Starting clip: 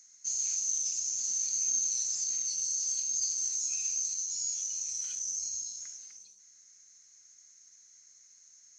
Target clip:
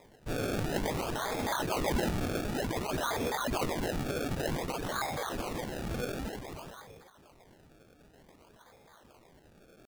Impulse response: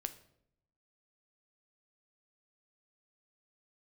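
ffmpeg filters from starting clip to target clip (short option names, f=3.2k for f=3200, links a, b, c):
-af "atempo=0.89,acrusher=samples=30:mix=1:aa=0.000001:lfo=1:lforange=30:lforate=0.54"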